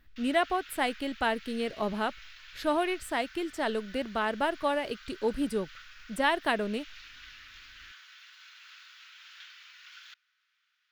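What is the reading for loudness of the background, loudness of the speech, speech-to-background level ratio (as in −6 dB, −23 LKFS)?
−49.5 LKFS, −31.0 LKFS, 18.5 dB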